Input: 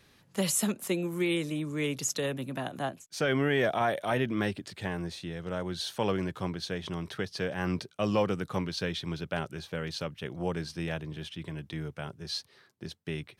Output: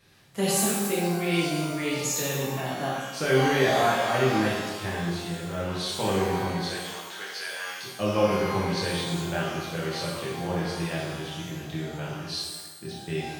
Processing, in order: 6.68–7.82 s: high-pass 540 Hz -> 1.4 kHz 12 dB/octave; pitch-shifted reverb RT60 1.1 s, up +12 st, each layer -8 dB, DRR -6.5 dB; trim -3 dB

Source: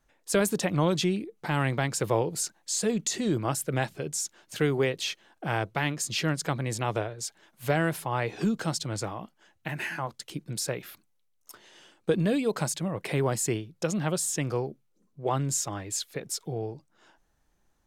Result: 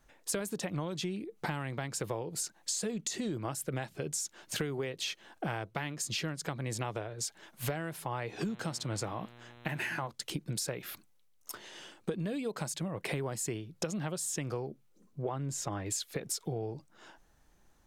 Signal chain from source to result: 15.22–15.86 s: treble shelf 3.5 kHz -10 dB; compression 12:1, threshold -37 dBFS, peak gain reduction 18.5 dB; 8.47–10.06 s: mains buzz 120 Hz, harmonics 34, -60 dBFS -4 dB/octave; trim +5 dB

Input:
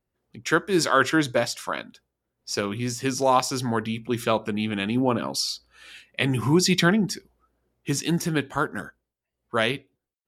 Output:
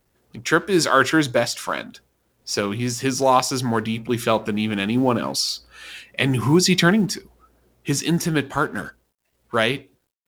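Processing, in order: companding laws mixed up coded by mu; trim +3 dB

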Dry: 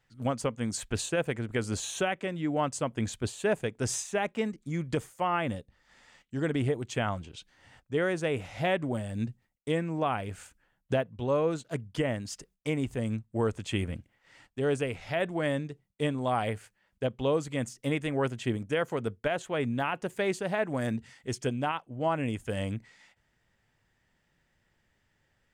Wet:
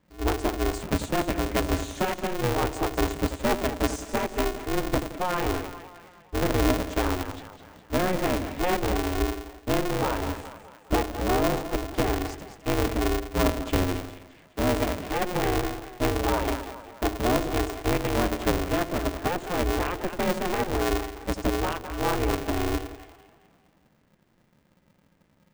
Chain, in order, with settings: tilt EQ -2.5 dB/octave; on a send: two-band feedback delay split 490 Hz, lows 86 ms, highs 207 ms, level -9 dB; on the sum: polarity switched at an audio rate 180 Hz

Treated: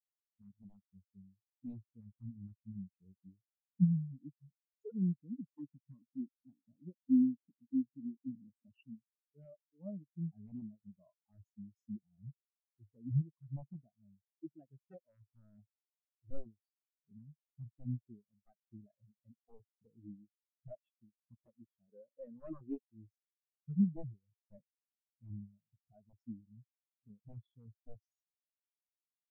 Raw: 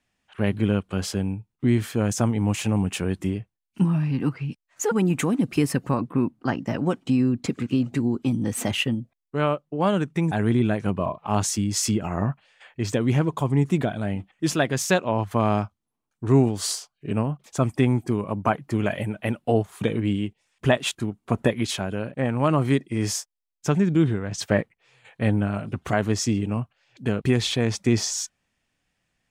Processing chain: 21.88–22.79 s: overdrive pedal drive 19 dB, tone 2 kHz, clips at -8.5 dBFS; integer overflow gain 12 dB; spectral contrast expander 4:1; trim -6.5 dB

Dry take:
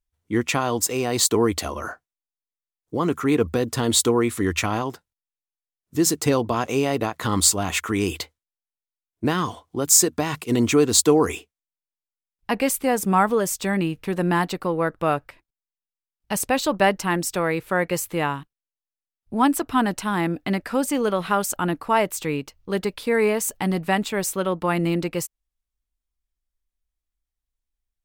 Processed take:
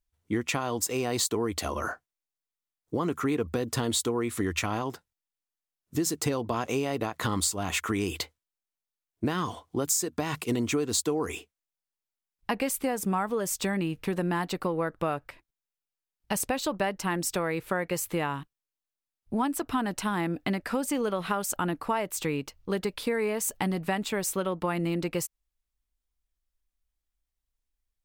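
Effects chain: compression, threshold -25 dBFS, peak gain reduction 13.5 dB

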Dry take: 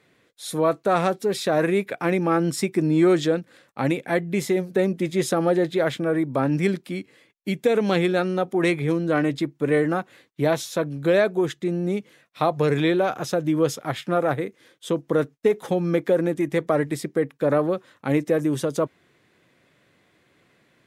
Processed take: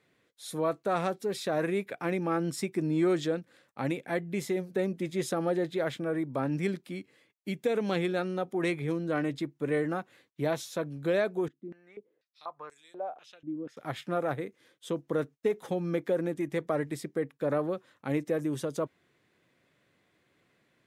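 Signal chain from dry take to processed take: 11.48–13.77 s: step-sequenced band-pass 4.1 Hz 260–7800 Hz; trim -8.5 dB

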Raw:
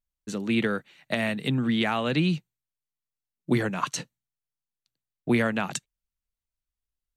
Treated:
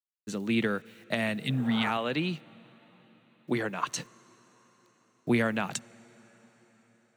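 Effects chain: word length cut 10-bit, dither none; 1.45–1.88 s: spectral replace 260–1600 Hz both; 1.97–3.89 s: tone controls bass -8 dB, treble -5 dB; on a send: reverberation RT60 5.2 s, pre-delay 43 ms, DRR 22.5 dB; on the sum: trim -2.5 dB

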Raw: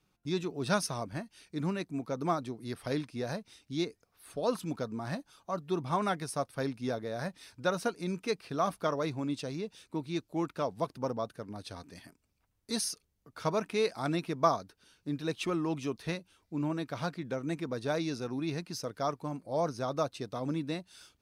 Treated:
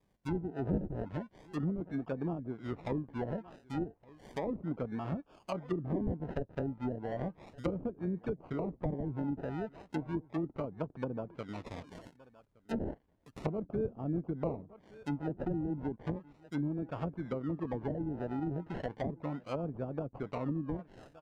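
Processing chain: decimation with a swept rate 31×, swing 60% 0.34 Hz; echo from a far wall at 200 m, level -24 dB; low-pass that closes with the level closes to 350 Hz, closed at -29 dBFS

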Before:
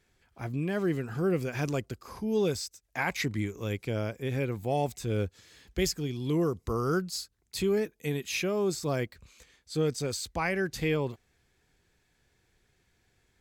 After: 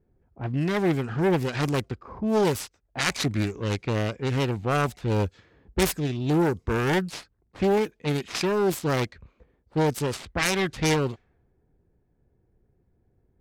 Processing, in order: self-modulated delay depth 0.45 ms; level-controlled noise filter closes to 490 Hz, open at -26.5 dBFS; trim +6 dB

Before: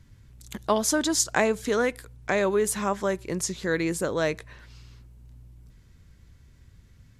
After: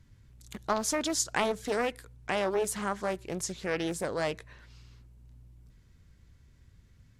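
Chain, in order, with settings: loudspeaker Doppler distortion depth 0.39 ms; trim -5 dB

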